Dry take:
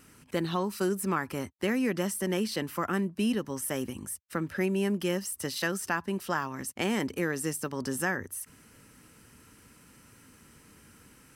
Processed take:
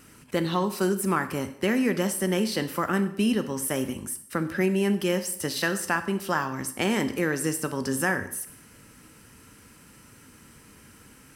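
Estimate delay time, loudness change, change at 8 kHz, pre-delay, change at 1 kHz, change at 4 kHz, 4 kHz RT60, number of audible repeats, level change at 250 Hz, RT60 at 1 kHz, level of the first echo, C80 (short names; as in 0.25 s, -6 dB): none, +4.5 dB, +4.5 dB, 7 ms, +4.5 dB, +4.5 dB, 0.60 s, none, +4.5 dB, 0.65 s, none, 15.5 dB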